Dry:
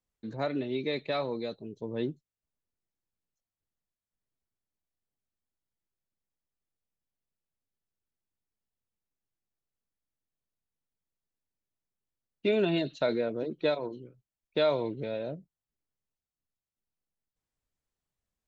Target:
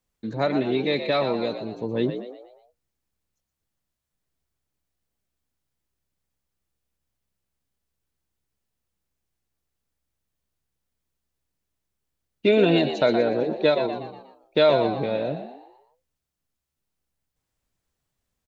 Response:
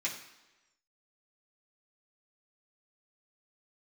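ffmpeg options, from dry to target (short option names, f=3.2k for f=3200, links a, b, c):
-filter_complex "[0:a]asplit=6[a][b][c][d][e][f];[b]adelay=120,afreqshift=66,volume=-9dB[g];[c]adelay=240,afreqshift=132,volume=-16.1dB[h];[d]adelay=360,afreqshift=198,volume=-23.3dB[i];[e]adelay=480,afreqshift=264,volume=-30.4dB[j];[f]adelay=600,afreqshift=330,volume=-37.5dB[k];[a][g][h][i][j][k]amix=inputs=6:normalize=0,volume=8dB"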